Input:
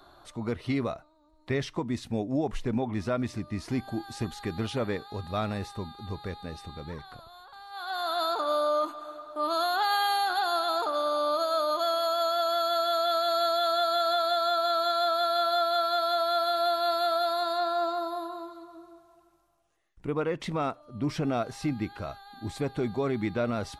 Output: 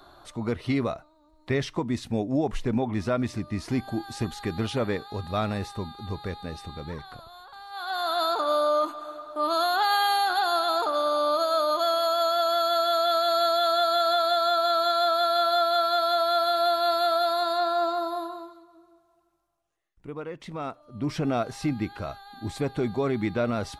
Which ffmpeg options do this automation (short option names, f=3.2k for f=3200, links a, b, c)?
-af "volume=12.5dB,afade=t=out:st=18.2:d=0.43:silence=0.316228,afade=t=in:st=20.45:d=0.86:silence=0.334965"